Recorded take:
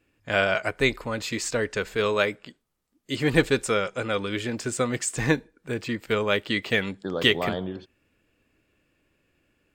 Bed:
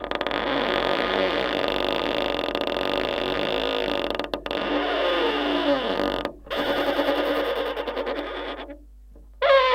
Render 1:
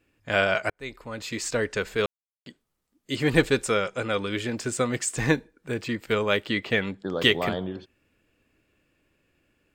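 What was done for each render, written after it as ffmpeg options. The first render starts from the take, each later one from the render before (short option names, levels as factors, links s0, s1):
-filter_complex "[0:a]asettb=1/sr,asplit=3[s0][s1][s2];[s0]atrim=end=6.504[s3];[s1]atrim=start=6.5:end=7.1,asetpts=PTS-STARTPTS,afade=t=in:d=0.004:c=qsin,afade=t=out:st=0.596:d=0.004:c=qsin,aemphasis=mode=reproduction:type=cd[s4];[s2]atrim=start=7.096[s5];[s3][s4]acrossfade=d=0.004:c1=hsin:c2=qsin[s6];[s6][s5]acrossfade=d=0.004:c1=qsin:c2=hsin,asplit=4[s7][s8][s9][s10];[s7]atrim=end=0.7,asetpts=PTS-STARTPTS,afade=t=out:st=0.696:d=0.004:c=hsin[s11];[s8]atrim=start=0.7:end=2.06,asetpts=PTS-STARTPTS,afade=t=in:d=0.86,afade=t=out:st=1.356:d=0.004:c=hsin[s12];[s9]atrim=start=2.06:end=2.46,asetpts=PTS-STARTPTS,volume=0[s13];[s10]atrim=start=2.46,asetpts=PTS-STARTPTS,afade=t=in:d=0.004:c=hsin[s14];[s11][s12][s13][s14]concat=n=4:v=0:a=1"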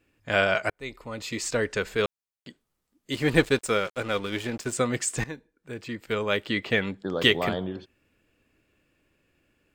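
-filter_complex "[0:a]asettb=1/sr,asplit=3[s0][s1][s2];[s0]atrim=end=0.784[s3];[s1]atrim=start=0.78:end=1.49,asetpts=PTS-STARTPTS,afade=t=in:d=0.004:c=qsin,afade=t=out:st=0.706:d=0.004:c=qsin,bandreject=f=1600:w=6.8[s4];[s2]atrim=start=1.486[s5];[s3][s4]acrossfade=d=0.004:c1=hsin:c2=qsin[s6];[s6][s5]acrossfade=d=0.004:c1=qsin:c2=hsin,asettb=1/sr,asplit=3[s7][s8][s9];[s7]atrim=end=3.124[s10];[s8]atrim=start=3.12:end=4.73,asetpts=PTS-STARTPTS,afade=t=in:d=0.004:c=qsin,afade=t=out:st=1.606:d=0.004:c=qsin,aeval=exprs='sgn(val(0))*max(abs(val(0))-0.00891,0)':c=same[s11];[s9]atrim=start=4.726[s12];[s10][s11]acrossfade=d=0.004:c1=hsin:c2=qsin[s13];[s13][s12]acrossfade=d=0.004:c1=qsin:c2=hsin,asplit=2[s14][s15];[s14]atrim=end=5.24,asetpts=PTS-STARTPTS,afade=t=out:st=5.236:d=0.004:c=hsin:silence=0.112202[s16];[s15]atrim=start=5.24,asetpts=PTS-STARTPTS,afade=t=in:d=1.43:silence=0.112202[s17];[s16][s17]concat=n=2:v=0:a=1"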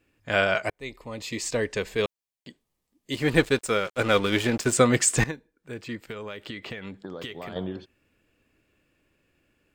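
-filter_complex "[0:a]asettb=1/sr,asplit=3[s0][s1][s2];[s0]atrim=end=0.644[s3];[s1]atrim=start=0.64:end=3.19,asetpts=PTS-STARTPTS,afade=t=in:d=0.004:c=qsin,afade=t=out:st=2.546:d=0.004:c=qsin,equalizer=f=1400:w=6.9:g=-12.5[s4];[s2]atrim=start=3.186[s5];[s3][s4]acrossfade=d=0.004:c1=hsin:c2=qsin[s6];[s6][s5]acrossfade=d=0.004:c1=qsin:c2=hsin,asplit=3[s7][s8][s9];[s7]afade=t=out:st=3.98:d=0.02[s10];[s8]acontrast=78,afade=t=in:st=3.98:d=0.02,afade=t=out:st=5.3:d=0.02[s11];[s9]afade=t=in:st=5.3:d=0.02[s12];[s10][s11][s12]amix=inputs=3:normalize=0,asettb=1/sr,asplit=3[s13][s14][s15];[s13]atrim=end=5.994[s16];[s14]atrim=start=5.99:end=7.56,asetpts=PTS-STARTPTS,afade=t=in:d=0.004:c=qsin,afade=t=out:st=1.566:d=0.004:c=qsin,acompressor=threshold=0.0251:ratio=12:attack=3.2:release=140:knee=1:detection=peak[s17];[s15]atrim=start=7.556[s18];[s16][s17]acrossfade=d=0.004:c1=hsin:c2=qsin[s19];[s19][s18]acrossfade=d=0.004:c1=qsin:c2=hsin"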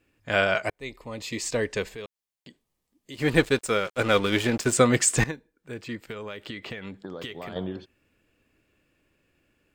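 -filter_complex "[0:a]asplit=3[s0][s1][s2];[s0]afade=t=out:st=1.88:d=0.02[s3];[s1]acompressor=threshold=0.00562:ratio=2:attack=3.2:release=140:knee=1:detection=peak,afade=t=in:st=1.88:d=0.02,afade=t=out:st=3.18:d=0.02[s4];[s2]afade=t=in:st=3.18:d=0.02[s5];[s3][s4][s5]amix=inputs=3:normalize=0"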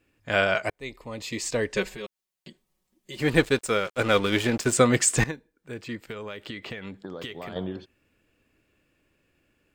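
-filter_complex "[0:a]asettb=1/sr,asplit=3[s0][s1][s2];[s0]atrim=end=1.744[s3];[s1]atrim=start=1.74:end=3.21,asetpts=PTS-STARTPTS,afade=t=in:d=0.004:c=qsin,afade=t=out:st=1.466:d=0.004:c=qsin,aecho=1:1:5.4:0.94,atrim=end_sample=64827[s4];[s2]atrim=start=3.206[s5];[s3][s4]acrossfade=d=0.004:c1=hsin:c2=qsin[s6];[s6][s5]acrossfade=d=0.004:c1=qsin:c2=hsin"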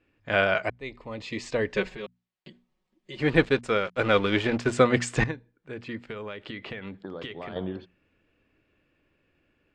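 -af "lowpass=3500,bandreject=f=60:t=h:w=6,bandreject=f=120:t=h:w=6,bandreject=f=180:t=h:w=6,bandreject=f=240:t=h:w=6"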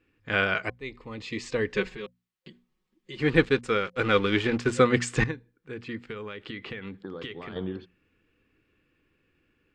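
-af "superequalizer=8b=0.355:9b=0.631"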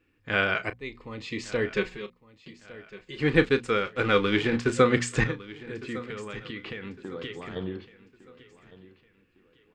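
-filter_complex "[0:a]asplit=2[s0][s1];[s1]adelay=34,volume=0.237[s2];[s0][s2]amix=inputs=2:normalize=0,aecho=1:1:1157|2314|3471:0.126|0.0466|0.0172"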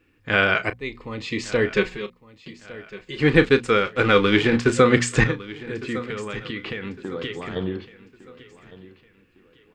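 -af "volume=2.11,alimiter=limit=0.708:level=0:latency=1"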